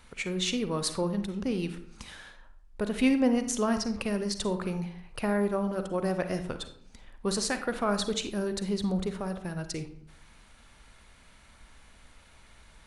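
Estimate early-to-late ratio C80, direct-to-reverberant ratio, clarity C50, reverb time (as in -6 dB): 14.0 dB, 8.5 dB, 10.0 dB, 0.65 s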